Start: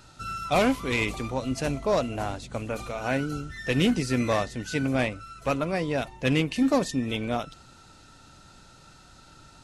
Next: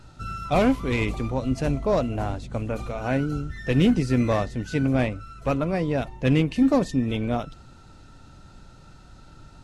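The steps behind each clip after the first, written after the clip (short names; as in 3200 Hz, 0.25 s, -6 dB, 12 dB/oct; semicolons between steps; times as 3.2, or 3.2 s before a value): tilt -2 dB/oct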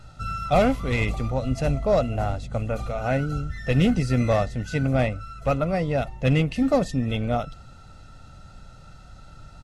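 comb 1.5 ms, depth 50%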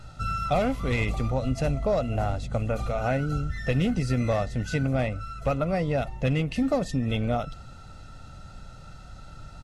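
compressor 3:1, threshold -24 dBFS, peak gain reduction 8 dB; gain +1.5 dB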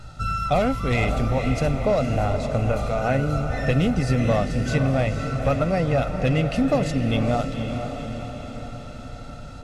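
diffused feedback echo 0.499 s, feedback 59%, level -7 dB; gain +3.5 dB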